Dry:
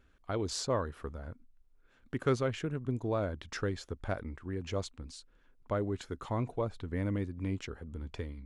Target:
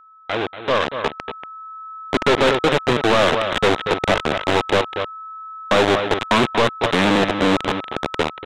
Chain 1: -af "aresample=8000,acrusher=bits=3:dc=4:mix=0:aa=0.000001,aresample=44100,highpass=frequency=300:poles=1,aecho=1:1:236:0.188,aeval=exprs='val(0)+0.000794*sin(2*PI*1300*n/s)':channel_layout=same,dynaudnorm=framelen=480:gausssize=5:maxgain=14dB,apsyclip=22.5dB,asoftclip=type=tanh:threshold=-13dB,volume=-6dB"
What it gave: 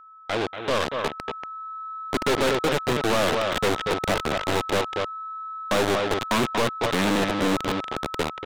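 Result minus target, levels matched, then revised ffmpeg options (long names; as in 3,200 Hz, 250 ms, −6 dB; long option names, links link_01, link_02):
soft clipping: distortion +9 dB
-af "aresample=8000,acrusher=bits=3:dc=4:mix=0:aa=0.000001,aresample=44100,highpass=frequency=300:poles=1,aecho=1:1:236:0.188,aeval=exprs='val(0)+0.000794*sin(2*PI*1300*n/s)':channel_layout=same,dynaudnorm=framelen=480:gausssize=5:maxgain=14dB,apsyclip=22.5dB,asoftclip=type=tanh:threshold=-4dB,volume=-6dB"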